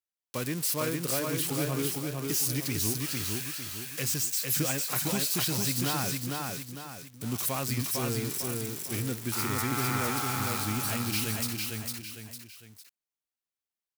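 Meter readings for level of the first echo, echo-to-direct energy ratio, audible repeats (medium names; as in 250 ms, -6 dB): -3.0 dB, -2.0 dB, 3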